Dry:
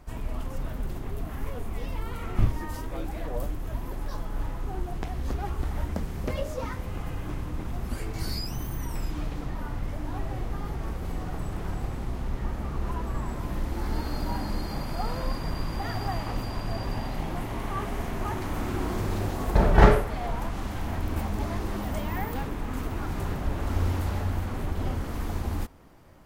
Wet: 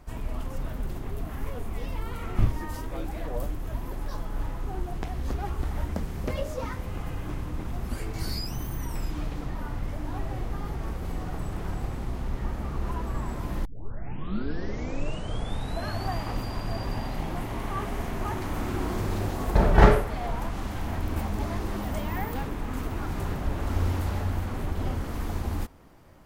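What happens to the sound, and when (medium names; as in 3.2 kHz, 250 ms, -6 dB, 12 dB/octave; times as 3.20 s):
13.65 s: tape start 2.51 s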